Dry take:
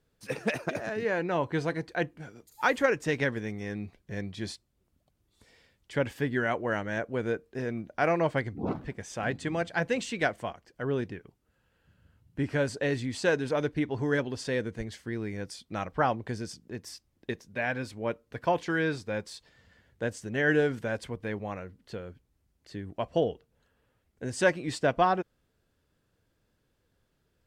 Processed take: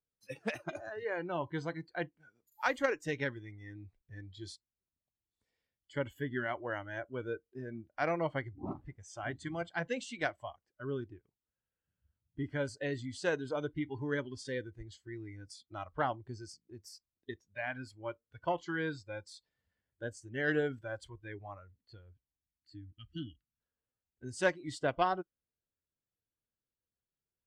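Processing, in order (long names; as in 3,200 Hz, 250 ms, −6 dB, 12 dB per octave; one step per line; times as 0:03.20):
harmonic generator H 3 −18 dB, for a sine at −10.5 dBFS
gain on a spectral selection 0:22.46–0:23.60, 330–1,200 Hz −28 dB
noise reduction from a noise print of the clip's start 17 dB
level −3.5 dB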